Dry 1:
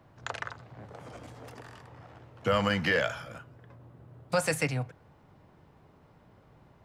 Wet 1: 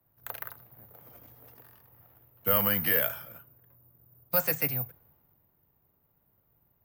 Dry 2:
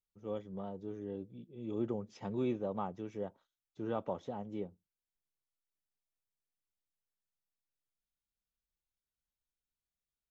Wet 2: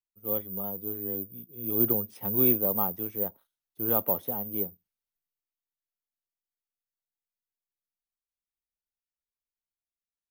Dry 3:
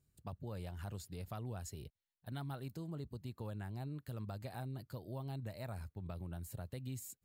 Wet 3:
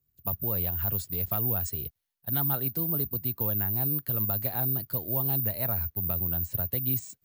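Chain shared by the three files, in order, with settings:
careless resampling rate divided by 3×, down filtered, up zero stuff; three-band expander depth 40%; match loudness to -27 LUFS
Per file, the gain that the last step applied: -7.0, +5.0, +11.0 dB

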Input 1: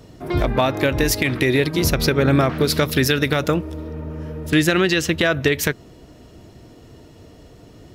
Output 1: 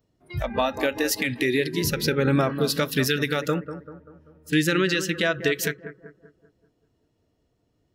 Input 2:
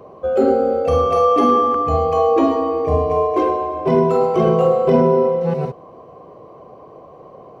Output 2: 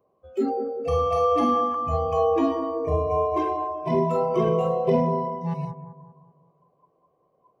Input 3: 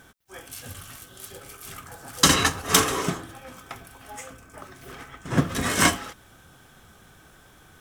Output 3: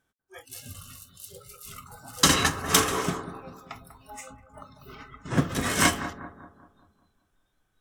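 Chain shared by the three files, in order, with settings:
spectral noise reduction 22 dB; analogue delay 0.194 s, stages 2048, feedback 46%, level -11 dB; match loudness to -24 LUFS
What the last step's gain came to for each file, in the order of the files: -4.5, -6.0, -2.0 dB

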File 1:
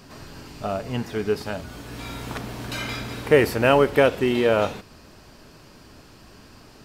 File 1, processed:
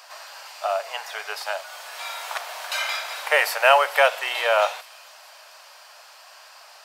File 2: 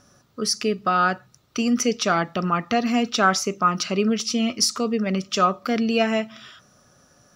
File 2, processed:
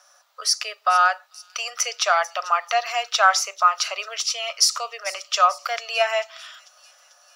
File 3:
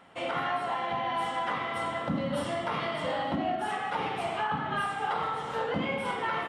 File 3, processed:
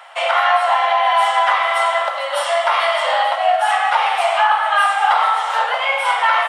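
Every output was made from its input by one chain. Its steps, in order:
steep high-pass 610 Hz 48 dB/oct; thin delay 0.443 s, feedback 53%, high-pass 5500 Hz, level -13.5 dB; normalise peaks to -3 dBFS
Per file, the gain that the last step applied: +5.5, +3.0, +16.5 dB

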